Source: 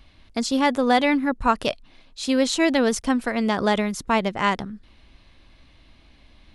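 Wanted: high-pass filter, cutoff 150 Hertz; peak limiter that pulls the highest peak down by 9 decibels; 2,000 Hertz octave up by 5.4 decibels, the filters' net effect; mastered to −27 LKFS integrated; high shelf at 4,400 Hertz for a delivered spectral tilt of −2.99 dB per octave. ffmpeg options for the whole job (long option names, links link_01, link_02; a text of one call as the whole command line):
ffmpeg -i in.wav -af "highpass=150,equalizer=frequency=2000:width_type=o:gain=5.5,highshelf=frequency=4400:gain=4,volume=-3.5dB,alimiter=limit=-16dB:level=0:latency=1" out.wav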